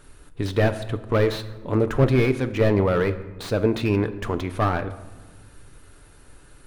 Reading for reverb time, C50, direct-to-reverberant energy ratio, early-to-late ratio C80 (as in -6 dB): 1.3 s, 14.0 dB, 9.0 dB, 15.5 dB